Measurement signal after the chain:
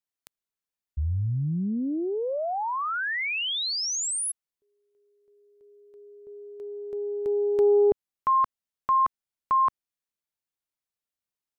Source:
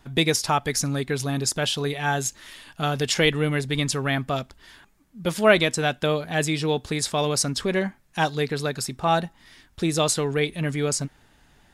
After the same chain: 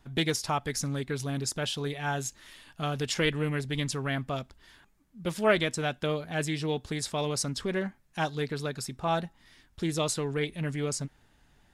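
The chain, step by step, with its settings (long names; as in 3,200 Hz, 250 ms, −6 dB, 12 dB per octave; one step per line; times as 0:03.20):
low-shelf EQ 180 Hz +3.5 dB
highs frequency-modulated by the lows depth 0.15 ms
level −7.5 dB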